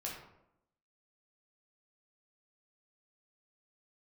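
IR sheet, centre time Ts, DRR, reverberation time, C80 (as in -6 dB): 44 ms, -4.0 dB, 0.80 s, 6.5 dB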